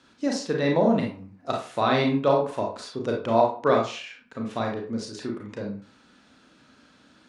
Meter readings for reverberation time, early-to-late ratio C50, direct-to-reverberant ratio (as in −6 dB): 0.40 s, 5.0 dB, −0.5 dB